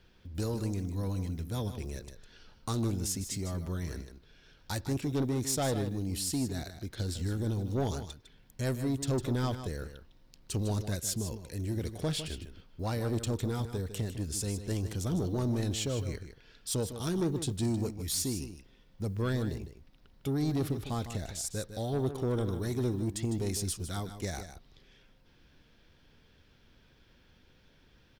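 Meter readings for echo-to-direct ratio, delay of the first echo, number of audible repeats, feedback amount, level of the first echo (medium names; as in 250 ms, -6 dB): -10.5 dB, 154 ms, 1, no regular repeats, -10.5 dB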